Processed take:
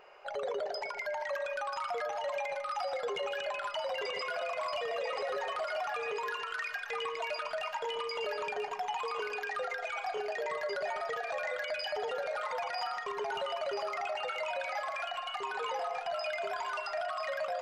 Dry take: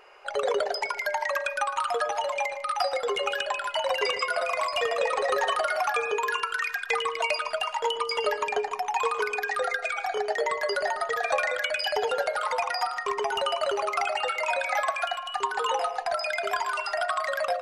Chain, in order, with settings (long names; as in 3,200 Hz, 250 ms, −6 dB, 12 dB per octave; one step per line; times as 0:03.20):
graphic EQ with 15 bands 160 Hz +9 dB, 630 Hz +5 dB, 10,000 Hz −11 dB
brickwall limiter −23 dBFS, peak gain reduction 14 dB
on a send: delay with a high-pass on its return 988 ms, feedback 49%, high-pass 1,700 Hz, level −6 dB
on the sum: level −5 dB